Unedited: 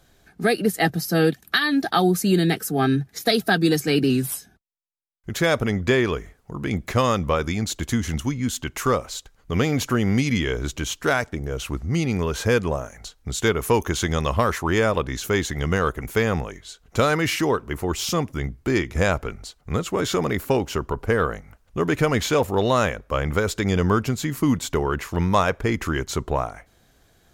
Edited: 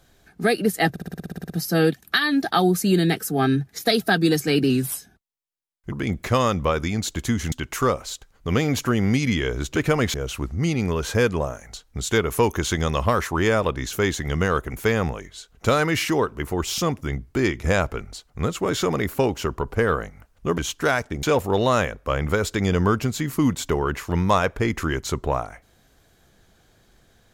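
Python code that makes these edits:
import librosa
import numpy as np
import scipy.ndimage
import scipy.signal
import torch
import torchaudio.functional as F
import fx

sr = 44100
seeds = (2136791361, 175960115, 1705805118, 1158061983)

y = fx.edit(x, sr, fx.stutter(start_s=0.9, slice_s=0.06, count=11),
    fx.cut(start_s=5.32, length_s=1.24),
    fx.cut(start_s=8.16, length_s=0.4),
    fx.swap(start_s=10.8, length_s=0.65, other_s=21.89, other_length_s=0.38), tone=tone)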